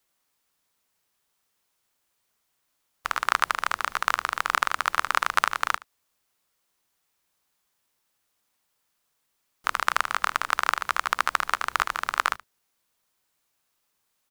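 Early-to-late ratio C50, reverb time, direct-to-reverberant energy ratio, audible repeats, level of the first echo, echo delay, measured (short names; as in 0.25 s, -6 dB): none, none, none, 1, -20.0 dB, 75 ms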